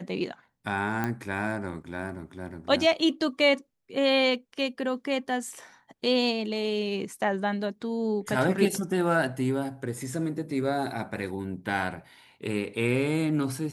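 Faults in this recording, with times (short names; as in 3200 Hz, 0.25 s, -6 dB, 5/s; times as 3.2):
1.04 pop -15 dBFS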